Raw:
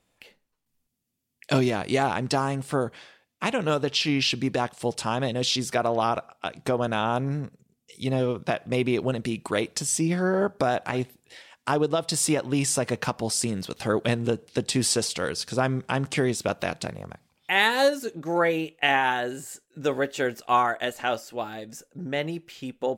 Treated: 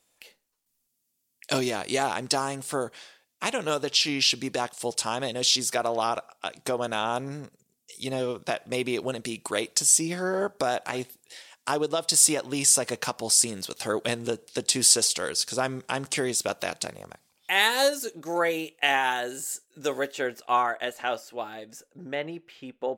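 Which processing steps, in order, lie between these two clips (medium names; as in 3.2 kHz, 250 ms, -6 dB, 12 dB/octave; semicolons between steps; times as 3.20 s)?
tone controls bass -9 dB, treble +10 dB, from 20.11 s treble -1 dB, from 22.14 s treble -11 dB; trim -2 dB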